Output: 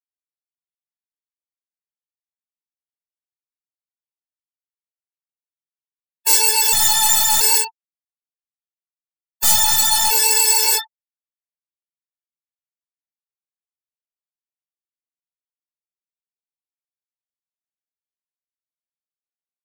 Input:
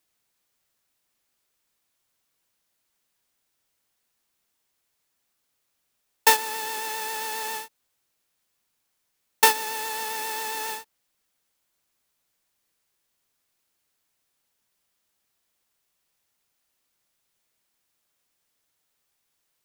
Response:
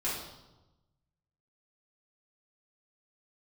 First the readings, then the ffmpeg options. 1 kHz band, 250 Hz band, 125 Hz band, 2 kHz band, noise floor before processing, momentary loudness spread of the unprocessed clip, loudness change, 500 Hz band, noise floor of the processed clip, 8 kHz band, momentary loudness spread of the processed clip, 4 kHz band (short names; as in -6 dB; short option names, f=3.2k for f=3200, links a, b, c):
+3.0 dB, +3.5 dB, n/a, +3.0 dB, -76 dBFS, 13 LU, +12.0 dB, +0.5 dB, under -85 dBFS, +16.5 dB, 6 LU, +13.0 dB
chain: -af "aecho=1:1:1.4:0.39,areverse,acompressor=threshold=-30dB:ratio=10,areverse,apsyclip=26.5dB,bandreject=f=6.5k:w=8.5,afftfilt=real='re*gte(hypot(re,im),0.398)':imag='im*gte(hypot(re,im),0.398)':win_size=1024:overlap=0.75,highpass=f=120:p=1,aemphasis=mode=production:type=75fm,aeval=exprs='clip(val(0),-1,0.447)':c=same,equalizer=f=7.1k:w=0.98:g=11,flanger=delay=19.5:depth=6.1:speed=0.33,afftfilt=real='re*gt(sin(2*PI*0.74*pts/sr)*(1-2*mod(floor(b*sr/1024/290),2)),0)':imag='im*gt(sin(2*PI*0.74*pts/sr)*(1-2*mod(floor(b*sr/1024/290),2)),0)':win_size=1024:overlap=0.75,volume=-5.5dB"